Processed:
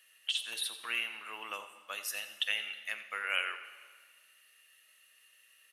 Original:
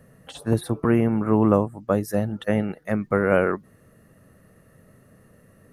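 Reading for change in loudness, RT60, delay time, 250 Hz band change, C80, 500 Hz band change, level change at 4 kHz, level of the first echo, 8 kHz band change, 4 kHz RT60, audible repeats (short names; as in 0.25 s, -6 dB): -12.5 dB, 1.6 s, 89 ms, under -40 dB, 10.5 dB, -29.5 dB, +10.5 dB, -14.0 dB, +1.5 dB, 1.5 s, 1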